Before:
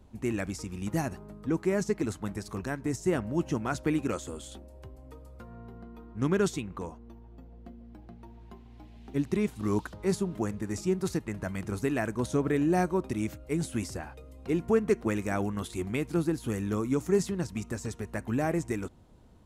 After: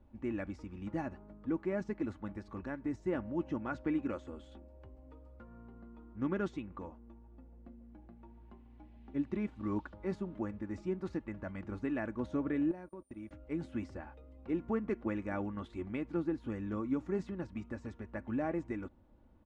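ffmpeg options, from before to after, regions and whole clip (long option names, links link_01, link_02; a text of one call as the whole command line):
ffmpeg -i in.wav -filter_complex "[0:a]asettb=1/sr,asplit=3[link_01][link_02][link_03];[link_01]atrim=end=12.714[link_04];[link_02]atrim=start=12.71:end=13.31,asetpts=PTS-STARTPTS,afade=type=in:duration=0.004:curve=qsin,afade=type=out:start_time=0.596:duration=0.004:curve=qsin,agate=range=-33dB:threshold=-33dB:ratio=16:release=100:detection=peak,aeval=exprs='val(0)+0.00708*sin(2*PI*9100*n/s)':channel_layout=same,acompressor=threshold=-36dB:ratio=5:attack=3.2:release=140:knee=1:detection=peak[link_05];[link_03]atrim=start=13.306[link_06];[link_04][link_05]acrossfade=duration=0.004:curve1=hsin:curve2=qsin[link_07];[link_07][link_06]acrossfade=duration=0.004:curve1=qsin:curve2=hsin,lowpass=2200,aecho=1:1:3.5:0.49,volume=-7.5dB" out.wav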